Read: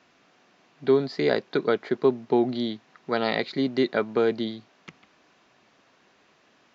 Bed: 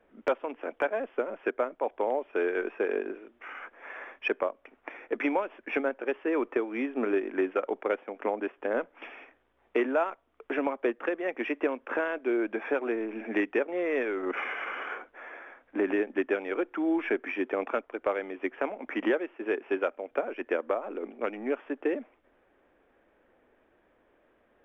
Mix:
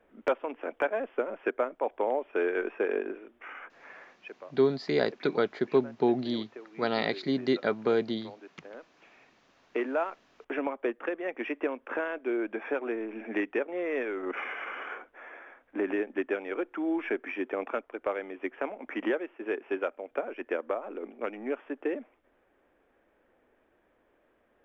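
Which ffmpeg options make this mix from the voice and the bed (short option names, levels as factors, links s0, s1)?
-filter_complex "[0:a]adelay=3700,volume=0.668[s0];[1:a]volume=5.31,afade=t=out:st=3.34:d=0.95:silence=0.141254,afade=t=in:st=8.98:d=1.02:silence=0.188365[s1];[s0][s1]amix=inputs=2:normalize=0"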